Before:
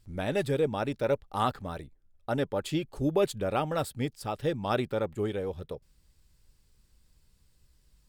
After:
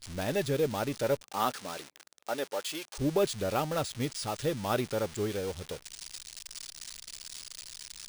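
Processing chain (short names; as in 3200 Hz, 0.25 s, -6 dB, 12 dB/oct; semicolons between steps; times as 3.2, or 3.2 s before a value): switching spikes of -23 dBFS; 1.21–2.97 HPF 180 Hz -> 650 Hz 12 dB/oct; careless resampling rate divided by 3×, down filtered, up hold; gain -1.5 dB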